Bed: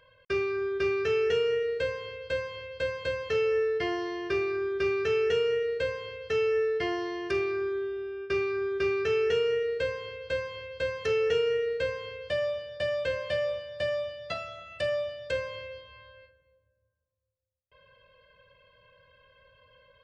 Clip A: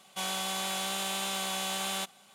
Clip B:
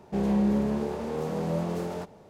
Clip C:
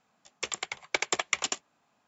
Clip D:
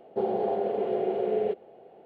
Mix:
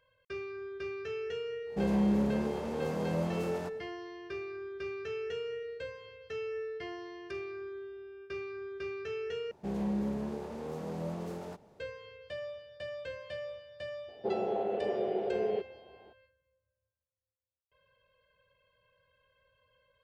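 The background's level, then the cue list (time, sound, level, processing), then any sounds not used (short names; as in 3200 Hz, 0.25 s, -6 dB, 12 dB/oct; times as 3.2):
bed -11.5 dB
1.64 add B -3.5 dB, fades 0.10 s
9.51 replace with B -8.5 dB
14.08 add D -5 dB
not used: A, C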